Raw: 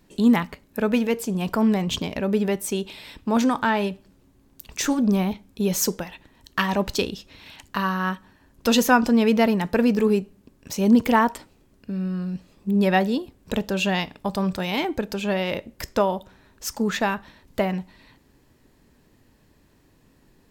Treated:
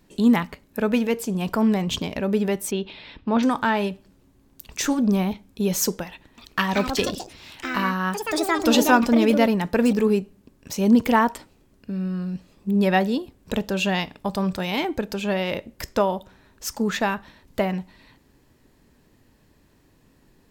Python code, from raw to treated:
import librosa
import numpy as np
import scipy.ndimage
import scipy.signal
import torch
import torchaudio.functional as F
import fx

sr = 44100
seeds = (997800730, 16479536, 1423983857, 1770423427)

y = fx.lowpass(x, sr, hz=4200.0, slope=24, at=(2.71, 3.43))
y = fx.echo_pitch(y, sr, ms=307, semitones=5, count=2, db_per_echo=-6.0, at=(6.07, 10.81))